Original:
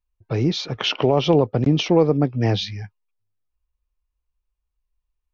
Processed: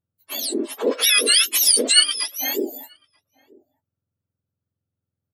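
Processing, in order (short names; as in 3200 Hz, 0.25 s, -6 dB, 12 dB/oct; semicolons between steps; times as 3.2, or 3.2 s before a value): spectrum mirrored in octaves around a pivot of 1200 Hz; 0.87–2.04 high shelf 3100 Hz +11 dB; outdoor echo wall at 160 m, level -27 dB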